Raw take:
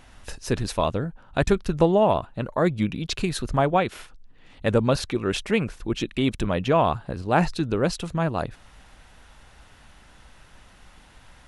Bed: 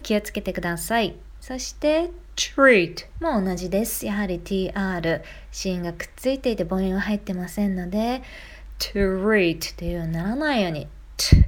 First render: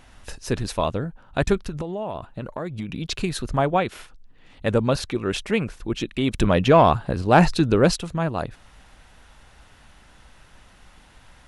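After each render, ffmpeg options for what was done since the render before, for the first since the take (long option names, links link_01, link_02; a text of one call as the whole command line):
ffmpeg -i in.wav -filter_complex "[0:a]asettb=1/sr,asplit=3[link_01][link_02][link_03];[link_01]atrim=end=1.594[link_04];[link_02]atrim=start=1.59:end=2.89,asetpts=PTS-STARTPTS,afade=type=in:duration=0.004:curve=qsin,afade=type=out:start_time=1.296:duration=0.004:curve=qsin,acompressor=threshold=-25dB:ratio=16:attack=3.2:release=140:knee=1:detection=peak[link_05];[link_03]atrim=start=2.886[link_06];[link_04][link_05]acrossfade=duration=0.004:curve1=hsin:curve2=qsin[link_07];[link_07][link_06]acrossfade=duration=0.004:curve1=qsin:curve2=hsin,asplit=3[link_08][link_09][link_10];[link_08]afade=type=out:start_time=6.33:duration=0.02[link_11];[link_09]acontrast=62,afade=type=in:start_time=6.33:duration=0.02,afade=type=out:start_time=7.95:duration=0.02[link_12];[link_10]afade=type=in:start_time=7.95:duration=0.02[link_13];[link_11][link_12][link_13]amix=inputs=3:normalize=0" out.wav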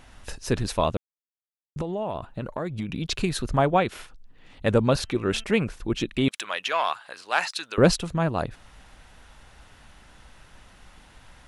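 ffmpeg -i in.wav -filter_complex "[0:a]asettb=1/sr,asplit=3[link_01][link_02][link_03];[link_01]atrim=end=5.034[link_04];[link_02]atrim=start=5.03:end=5.44,asetpts=PTS-STARTPTS,afade=type=in:duration=0.004:curve=qsin,afade=type=out:start_time=0.406:duration=0.004:curve=qsin,bandreject=frequency=222.6:width_type=h:width=4,bandreject=frequency=445.2:width_type=h:width=4,bandreject=frequency=667.8:width_type=h:width=4,bandreject=frequency=890.4:width_type=h:width=4,bandreject=frequency=1113:width_type=h:width=4,bandreject=frequency=1335.6:width_type=h:width=4,bandreject=frequency=1558.2:width_type=h:width=4,bandreject=frequency=1780.8:width_type=h:width=4,bandreject=frequency=2003.4:width_type=h:width=4,bandreject=frequency=2226:width_type=h:width=4,bandreject=frequency=2448.6:width_type=h:width=4,bandreject=frequency=2671.2:width_type=h:width=4,bandreject=frequency=2893.8:width_type=h:width=4,bandreject=frequency=3116.4:width_type=h:width=4[link_05];[link_03]atrim=start=5.436[link_06];[link_04][link_05]acrossfade=duration=0.004:curve1=hsin:curve2=qsin[link_07];[link_07][link_06]acrossfade=duration=0.004:curve1=qsin:curve2=hsin,asettb=1/sr,asplit=3[link_08][link_09][link_10];[link_08]atrim=end=6.284[link_11];[link_09]atrim=start=6.28:end=7.78,asetpts=PTS-STARTPTS,afade=type=in:duration=0.004:curve=qsin,afade=type=out:start_time=1.496:duration=0.004:curve=qsin,highpass=1400[link_12];[link_10]atrim=start=7.776[link_13];[link_11][link_12]acrossfade=duration=0.004:curve1=hsin:curve2=qsin[link_14];[link_14][link_13]acrossfade=duration=0.004:curve1=qsin:curve2=hsin,asplit=3[link_15][link_16][link_17];[link_15]atrim=end=0.97,asetpts=PTS-STARTPTS,afade=type=out:start_time=0.966:duration=0.004:curve=hsin[link_18];[link_16]atrim=start=0.97:end=1.76,asetpts=PTS-STARTPTS,volume=0[link_19];[link_17]atrim=start=1.76,asetpts=PTS-STARTPTS,afade=type=in:duration=0.004:curve=hsin[link_20];[link_18][link_19][link_20]concat=n=3:v=0:a=1" out.wav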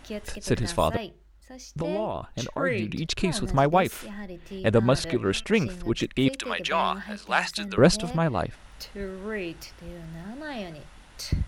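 ffmpeg -i in.wav -i bed.wav -filter_complex "[1:a]volume=-13.5dB[link_01];[0:a][link_01]amix=inputs=2:normalize=0" out.wav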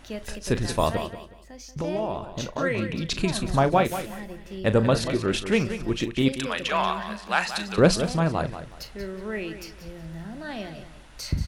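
ffmpeg -i in.wav -filter_complex "[0:a]asplit=2[link_01][link_02];[link_02]adelay=37,volume=-13dB[link_03];[link_01][link_03]amix=inputs=2:normalize=0,aecho=1:1:183|366|549:0.282|0.0761|0.0205" out.wav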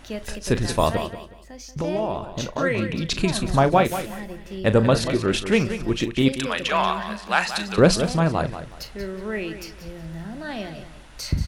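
ffmpeg -i in.wav -af "volume=3dB,alimiter=limit=-3dB:level=0:latency=1" out.wav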